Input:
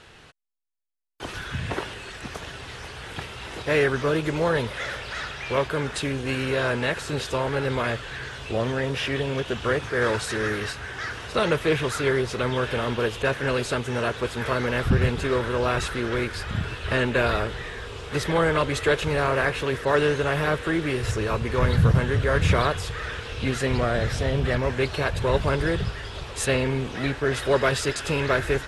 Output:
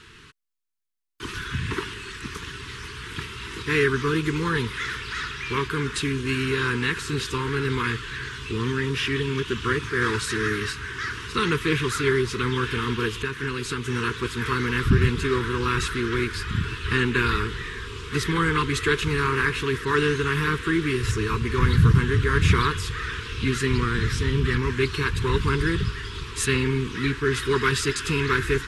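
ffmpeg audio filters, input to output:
-filter_complex "[0:a]asettb=1/sr,asplit=3[s0][s1][s2];[s0]atrim=end=13.174[s3];[s1]atrim=start=13.17:end=13.84,asetpts=PTS-STARTPTS,afade=t=in:d=0.004:c=qsin,afade=t=out:st=0.666:d=0.004:c=qsin,acompressor=threshold=0.0562:ratio=6[s4];[s2]atrim=start=13.836[s5];[s3][s4]acrossfade=d=0.004:c1=hsin:c2=qsin[s6];[s6][s5]acrossfade=d=0.004:c1=qsin:c2=hsin,asuperstop=centerf=650:order=8:qfactor=1.2,volume=1.26"

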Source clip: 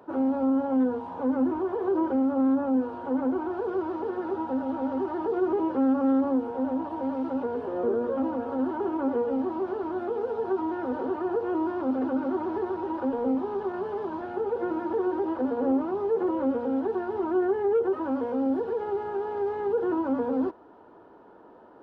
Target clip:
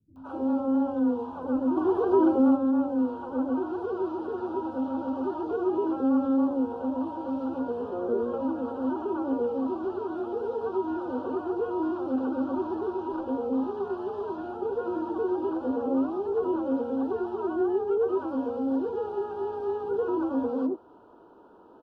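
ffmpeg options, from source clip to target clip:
-filter_complex "[0:a]asuperstop=centerf=2000:order=4:qfactor=1.7,acrossover=split=150|680[s0][s1][s2];[s2]adelay=160[s3];[s1]adelay=250[s4];[s0][s4][s3]amix=inputs=3:normalize=0,asplit=3[s5][s6][s7];[s5]afade=t=out:st=1.76:d=0.02[s8];[s6]acontrast=39,afade=t=in:st=1.76:d=0.02,afade=t=out:st=2.55:d=0.02[s9];[s7]afade=t=in:st=2.55:d=0.02[s10];[s8][s9][s10]amix=inputs=3:normalize=0"

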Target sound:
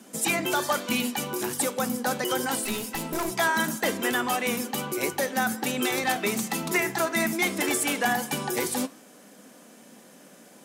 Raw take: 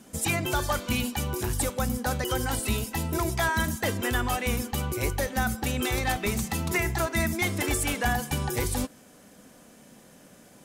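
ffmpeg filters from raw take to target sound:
-filter_complex "[0:a]highpass=f=190:w=0.5412,highpass=f=190:w=1.3066,asettb=1/sr,asplit=3[s0][s1][s2];[s0]atrim=end=2.644[s3];[s1]atrim=start=2.64:end=3.32,asetpts=PTS-STARTPTS,afade=t=in:d=0.004:c=qsin,afade=t=out:st=0.676:d=0.004:c=qsin,aeval=exprs='clip(val(0),-1,0.0188)':c=same[s4];[s2]atrim=start=3.316[s5];[s3][s4]acrossfade=d=0.004:c1=hsin:c2=qsin[s6];[s6][s5]acrossfade=d=0.004:c1=qsin:c2=hsin,flanger=delay=4.5:depth=7.4:regen=-87:speed=1.2:shape=triangular,volume=2.24"

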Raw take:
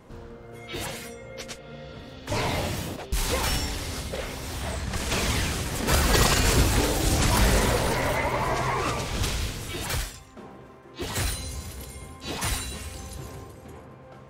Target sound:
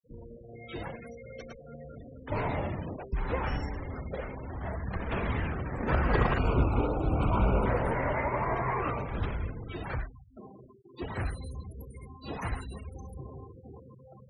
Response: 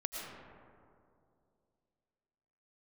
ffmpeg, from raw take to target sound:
-filter_complex "[0:a]acrossover=split=120|1400|2100[s0][s1][s2][s3];[s3]acompressor=threshold=0.00562:ratio=12[s4];[s0][s1][s2][s4]amix=inputs=4:normalize=0,asettb=1/sr,asplit=3[s5][s6][s7];[s5]atrim=end=6.384[s8];[s6]atrim=start=6.38:end=7.66,asetpts=PTS-STARTPTS,afade=t=in:d=0.004:c=qsin,afade=t=out:st=1.276:d=0.004:c=qsin,asuperstop=centerf=1800:order=8:qfactor=2.4[s9];[s7]atrim=start=7.656[s10];[s8][s9]acrossfade=d=0.004:c1=hsin:c2=qsin[s11];[s11][s10]acrossfade=d=0.004:c1=qsin:c2=hsin,afftfilt=real='re*gte(hypot(re,im),0.0178)':imag='im*gte(hypot(re,im),0.0178)':win_size=1024:overlap=0.75,volume=0.668"

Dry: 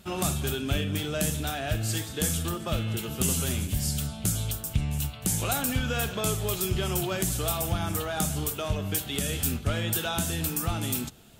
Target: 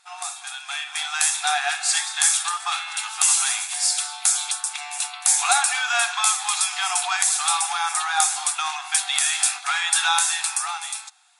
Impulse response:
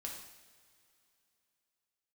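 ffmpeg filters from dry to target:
-af "bandreject=f=3000:w=5.6,afftfilt=real='re*between(b*sr/4096,700,11000)':imag='im*between(b*sr/4096,700,11000)':win_size=4096:overlap=0.75,dynaudnorm=f=110:g=17:m=6.68"

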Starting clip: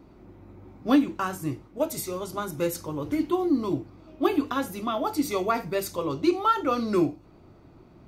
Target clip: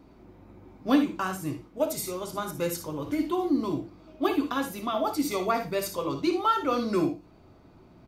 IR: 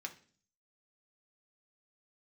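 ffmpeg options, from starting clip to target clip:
-filter_complex "[0:a]aecho=1:1:58|75:0.316|0.188,asplit=2[s0][s1];[1:a]atrim=start_sample=2205,asetrate=88200,aresample=44100[s2];[s1][s2]afir=irnorm=-1:irlink=0,volume=1.19[s3];[s0][s3]amix=inputs=2:normalize=0,volume=0.708"

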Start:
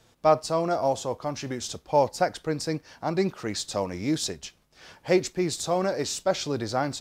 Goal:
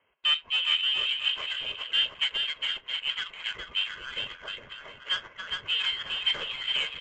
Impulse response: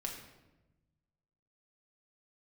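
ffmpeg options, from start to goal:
-filter_complex "[0:a]highpass=f=590:w=0.5412,highpass=f=590:w=1.3066,aecho=1:1:1.9:0.47,asoftclip=type=tanh:threshold=0.0794,lowpass=f=3100:t=q:w=0.5098,lowpass=f=3100:t=q:w=0.6013,lowpass=f=3100:t=q:w=0.9,lowpass=f=3100:t=q:w=2.563,afreqshift=-3700,aecho=1:1:410|717.5|948.1|1121|1251:0.631|0.398|0.251|0.158|0.1,asplit=2[s0][s1];[1:a]atrim=start_sample=2205,atrim=end_sample=4410[s2];[s1][s2]afir=irnorm=-1:irlink=0,volume=0.251[s3];[s0][s3]amix=inputs=2:normalize=0,adynamicsmooth=sensitivity=5.5:basefreq=1500" -ar 16000 -c:a libvorbis -b:a 64k

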